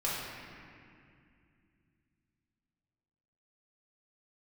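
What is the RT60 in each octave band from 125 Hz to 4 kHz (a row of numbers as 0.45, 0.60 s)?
3.9, 3.6, 2.5, 2.2, 2.4, 1.7 s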